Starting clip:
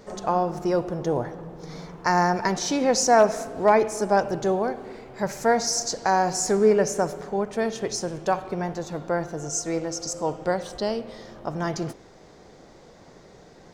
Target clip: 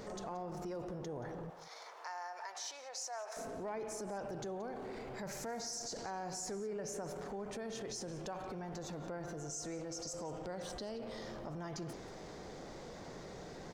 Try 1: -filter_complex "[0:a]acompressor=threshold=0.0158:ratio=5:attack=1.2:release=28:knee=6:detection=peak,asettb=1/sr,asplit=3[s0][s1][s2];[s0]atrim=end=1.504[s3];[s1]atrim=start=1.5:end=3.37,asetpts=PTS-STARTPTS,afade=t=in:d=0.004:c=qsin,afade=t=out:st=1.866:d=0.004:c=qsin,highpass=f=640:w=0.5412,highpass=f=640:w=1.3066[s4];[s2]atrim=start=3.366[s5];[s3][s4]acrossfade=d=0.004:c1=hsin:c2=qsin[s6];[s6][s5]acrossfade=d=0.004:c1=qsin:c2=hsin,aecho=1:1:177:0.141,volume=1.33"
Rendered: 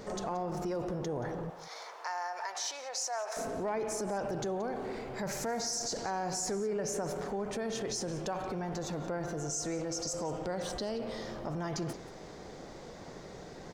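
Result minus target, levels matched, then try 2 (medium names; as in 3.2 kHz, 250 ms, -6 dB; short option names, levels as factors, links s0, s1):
compression: peak gain reduction -7.5 dB
-filter_complex "[0:a]acompressor=threshold=0.00531:ratio=5:attack=1.2:release=28:knee=6:detection=peak,asettb=1/sr,asplit=3[s0][s1][s2];[s0]atrim=end=1.504[s3];[s1]atrim=start=1.5:end=3.37,asetpts=PTS-STARTPTS,afade=t=in:d=0.004:c=qsin,afade=t=out:st=1.866:d=0.004:c=qsin,highpass=f=640:w=0.5412,highpass=f=640:w=1.3066[s4];[s2]atrim=start=3.366[s5];[s3][s4]acrossfade=d=0.004:c1=hsin:c2=qsin[s6];[s6][s5]acrossfade=d=0.004:c1=qsin:c2=hsin,aecho=1:1:177:0.141,volume=1.33"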